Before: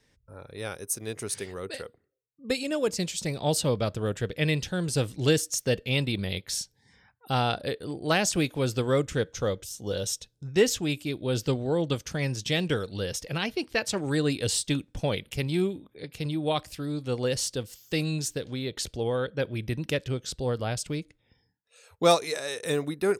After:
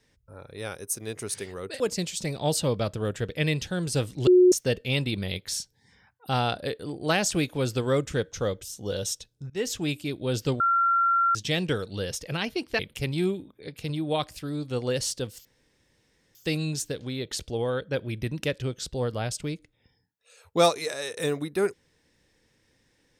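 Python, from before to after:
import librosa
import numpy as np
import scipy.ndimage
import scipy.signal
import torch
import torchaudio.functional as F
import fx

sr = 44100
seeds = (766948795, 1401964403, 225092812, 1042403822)

y = fx.edit(x, sr, fx.cut(start_s=1.8, length_s=1.01),
    fx.bleep(start_s=5.28, length_s=0.25, hz=363.0, db=-12.5),
    fx.fade_in_from(start_s=10.51, length_s=0.33, floor_db=-20.0),
    fx.bleep(start_s=11.61, length_s=0.75, hz=1370.0, db=-19.0),
    fx.cut(start_s=13.8, length_s=1.35),
    fx.insert_room_tone(at_s=17.81, length_s=0.9), tone=tone)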